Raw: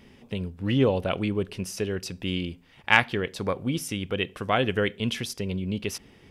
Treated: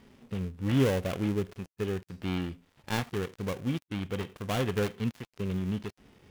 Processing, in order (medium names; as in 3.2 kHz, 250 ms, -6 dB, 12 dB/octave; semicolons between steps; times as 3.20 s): dead-time distortion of 0.28 ms; harmonic-percussive split harmonic +7 dB; trim -8 dB